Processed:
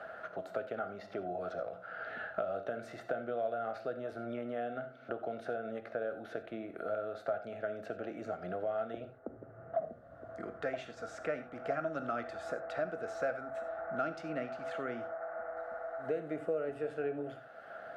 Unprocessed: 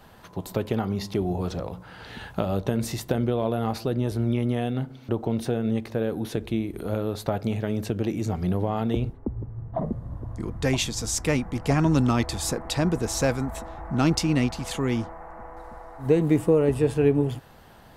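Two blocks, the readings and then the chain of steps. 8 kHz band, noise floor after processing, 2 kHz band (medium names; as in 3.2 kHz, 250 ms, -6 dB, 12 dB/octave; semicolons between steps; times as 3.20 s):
under -30 dB, -54 dBFS, -7.0 dB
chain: two resonant band-passes 960 Hz, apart 1.1 oct; gated-style reverb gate 110 ms flat, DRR 9 dB; three bands compressed up and down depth 70%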